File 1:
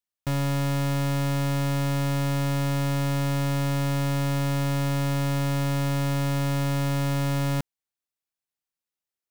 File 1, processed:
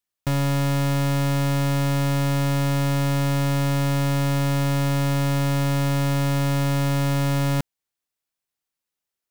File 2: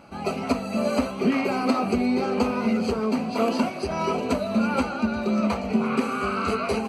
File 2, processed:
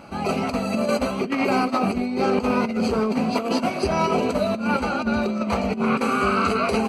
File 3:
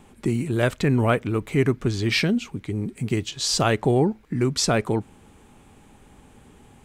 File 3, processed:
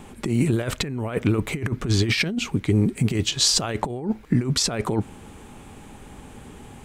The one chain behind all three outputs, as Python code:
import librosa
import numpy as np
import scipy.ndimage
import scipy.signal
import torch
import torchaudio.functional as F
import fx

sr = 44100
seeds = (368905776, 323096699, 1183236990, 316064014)

y = fx.over_compress(x, sr, threshold_db=-25.0, ratio=-0.5)
y = y * librosa.db_to_amplitude(4.0)